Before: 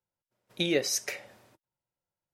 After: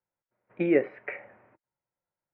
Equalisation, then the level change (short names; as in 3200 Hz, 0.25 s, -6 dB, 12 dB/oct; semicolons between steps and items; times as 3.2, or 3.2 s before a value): steep low-pass 2300 Hz 48 dB/oct; low shelf 200 Hz -6.5 dB; dynamic EQ 310 Hz, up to +6 dB, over -40 dBFS, Q 1; +2.0 dB